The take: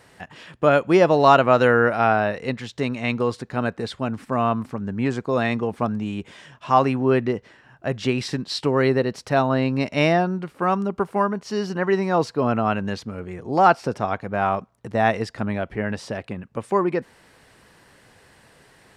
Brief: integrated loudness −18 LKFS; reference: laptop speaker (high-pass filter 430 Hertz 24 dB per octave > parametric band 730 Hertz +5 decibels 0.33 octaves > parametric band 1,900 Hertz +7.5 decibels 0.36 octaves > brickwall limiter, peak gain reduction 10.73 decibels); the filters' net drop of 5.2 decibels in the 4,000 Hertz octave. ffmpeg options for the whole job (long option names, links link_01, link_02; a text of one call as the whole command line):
ffmpeg -i in.wav -af "highpass=frequency=430:width=0.5412,highpass=frequency=430:width=1.3066,equalizer=frequency=730:width_type=o:width=0.33:gain=5,equalizer=frequency=1900:width_type=o:width=0.36:gain=7.5,equalizer=frequency=4000:width_type=o:gain=-7.5,volume=7dB,alimiter=limit=-4.5dB:level=0:latency=1" out.wav